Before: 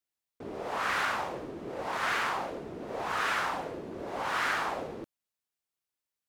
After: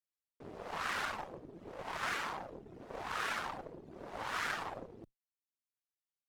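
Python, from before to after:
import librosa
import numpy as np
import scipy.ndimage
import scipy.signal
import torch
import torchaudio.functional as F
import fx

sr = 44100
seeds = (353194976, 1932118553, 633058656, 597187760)

y = fx.octave_divider(x, sr, octaves=1, level_db=-6.0)
y = fx.dereverb_blind(y, sr, rt60_s=0.79)
y = fx.cheby_harmonics(y, sr, harmonics=(7, 8), levels_db=(-24, -23), full_scale_db=-18.5)
y = F.gain(torch.from_numpy(y), -5.0).numpy()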